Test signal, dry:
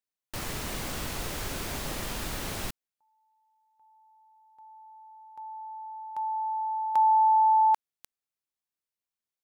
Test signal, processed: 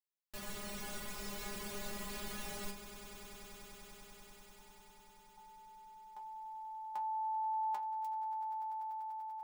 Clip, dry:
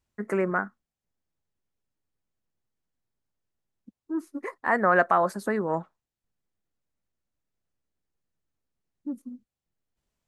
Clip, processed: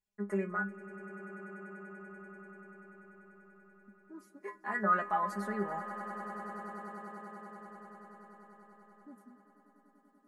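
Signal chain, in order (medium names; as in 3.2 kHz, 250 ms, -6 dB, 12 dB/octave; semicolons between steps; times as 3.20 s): inharmonic resonator 200 Hz, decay 0.21 s, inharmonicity 0.002; on a send: echo with a slow build-up 97 ms, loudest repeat 8, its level -18 dB; on the sum: trim +1 dB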